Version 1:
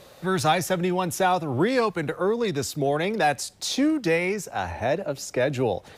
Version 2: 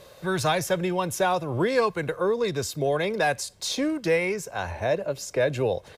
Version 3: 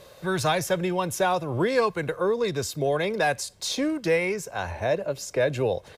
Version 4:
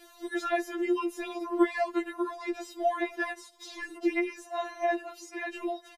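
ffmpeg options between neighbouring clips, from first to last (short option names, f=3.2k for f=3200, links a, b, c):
-af "aecho=1:1:1.9:0.37,volume=-1.5dB"
-af anull
-filter_complex "[0:a]acrossover=split=2600[a][b];[b]acompressor=threshold=-46dB:ratio=4:attack=1:release=60[c];[a][c]amix=inputs=2:normalize=0,asplit=2[d][e];[e]adelay=1166,volume=-24dB,highshelf=f=4k:g=-26.2[f];[d][f]amix=inputs=2:normalize=0,afftfilt=real='re*4*eq(mod(b,16),0)':imag='im*4*eq(mod(b,16),0)':win_size=2048:overlap=0.75"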